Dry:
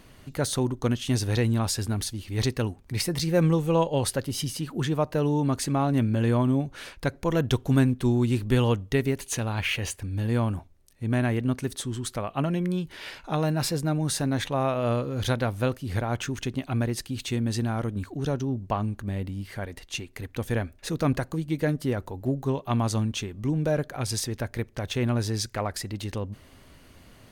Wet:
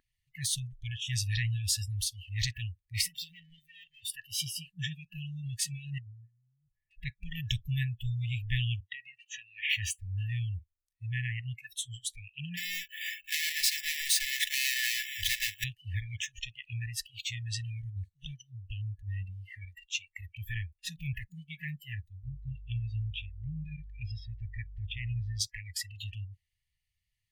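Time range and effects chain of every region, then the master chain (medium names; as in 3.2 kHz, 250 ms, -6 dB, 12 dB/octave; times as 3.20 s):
3.08–4.10 s: small resonant body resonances 270/3600 Hz, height 18 dB, ringing for 85 ms + valve stage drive 32 dB, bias 0.5
5.98–6.91 s: low-pass 1.1 kHz 24 dB/octave + compression 16:1, threshold -28 dBFS
8.80–9.70 s: band-pass 180–3600 Hz + compression 12:1, threshold -27 dBFS
12.57–15.64 s: square wave that keeps the level + resonant low shelf 310 Hz -10.5 dB, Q 3 + comb 2.3 ms, depth 37%
22.22–25.39 s: mains buzz 50 Hz, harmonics 8, -39 dBFS -2 dB/octave + distance through air 260 m
whole clip: FFT band-reject 190–1700 Hz; spectral noise reduction 29 dB; peaking EQ 180 Hz -12.5 dB 1.1 oct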